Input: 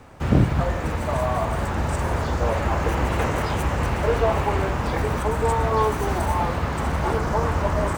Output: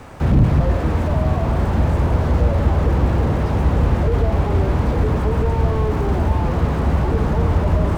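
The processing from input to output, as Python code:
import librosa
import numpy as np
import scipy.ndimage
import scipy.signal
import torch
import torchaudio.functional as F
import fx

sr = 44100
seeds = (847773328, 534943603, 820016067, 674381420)

y = fx.echo_multitap(x, sr, ms=(202, 889), db=(-18.0, -18.0))
y = fx.slew_limit(y, sr, full_power_hz=18.0)
y = y * librosa.db_to_amplitude(8.0)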